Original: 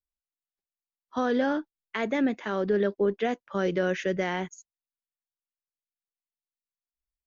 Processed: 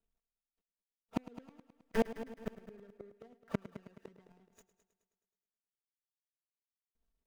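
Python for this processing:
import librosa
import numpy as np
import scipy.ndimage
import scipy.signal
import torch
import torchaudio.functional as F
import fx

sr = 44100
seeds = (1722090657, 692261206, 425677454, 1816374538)

p1 = scipy.signal.medfilt(x, 41)
p2 = fx.notch(p1, sr, hz=4300.0, q=20.0)
p3 = p2 + 0.81 * np.pad(p2, (int(4.4 * sr / 1000.0), 0))[:len(p2)]
p4 = fx.gate_flip(p3, sr, shuts_db=-25.0, range_db=-40)
p5 = p4 + fx.echo_heads(p4, sr, ms=106, heads='first and second', feedback_pct=47, wet_db=-15.5, dry=0)
y = F.gain(torch.from_numpy(p5), 5.5).numpy()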